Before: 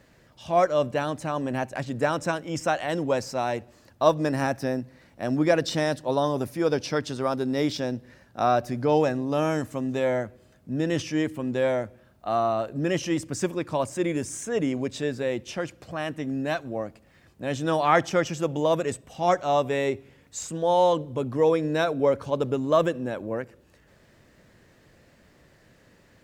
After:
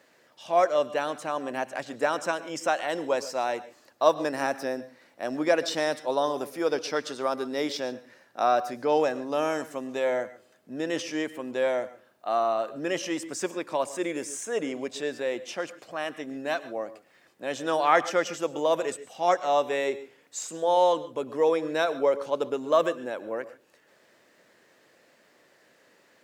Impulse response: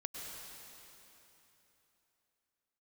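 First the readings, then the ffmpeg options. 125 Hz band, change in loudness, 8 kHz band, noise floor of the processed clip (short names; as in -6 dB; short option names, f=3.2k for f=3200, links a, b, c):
-16.5 dB, -2.0 dB, 0.0 dB, -62 dBFS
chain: -filter_complex "[0:a]highpass=380,asplit=2[a][b];[1:a]atrim=start_sample=2205,afade=t=out:st=0.2:d=0.01,atrim=end_sample=9261[c];[b][c]afir=irnorm=-1:irlink=0,volume=-3dB[d];[a][d]amix=inputs=2:normalize=0,volume=-3.5dB"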